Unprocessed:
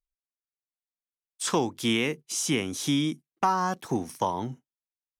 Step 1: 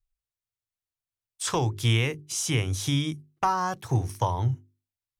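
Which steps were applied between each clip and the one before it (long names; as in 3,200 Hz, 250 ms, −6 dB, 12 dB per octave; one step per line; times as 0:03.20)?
low shelf with overshoot 150 Hz +11.5 dB, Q 3
mains-hum notches 50/100/150/200/250/300/350/400 Hz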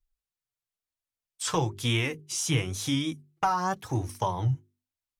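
pitch vibrato 3.3 Hz 45 cents
flanger 1 Hz, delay 2.9 ms, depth 4 ms, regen +23%
level +2.5 dB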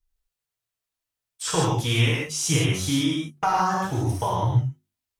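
reverb whose tail is shaped and stops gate 190 ms flat, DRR −4 dB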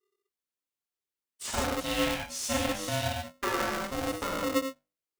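ring modulator with a square carrier 400 Hz
level −8 dB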